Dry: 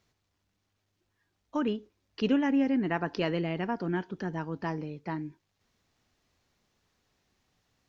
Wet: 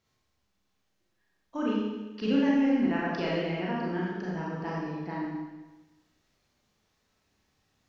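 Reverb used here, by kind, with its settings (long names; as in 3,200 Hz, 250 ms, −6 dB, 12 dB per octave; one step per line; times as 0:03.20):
four-comb reverb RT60 1.2 s, combs from 29 ms, DRR −5.5 dB
level −5.5 dB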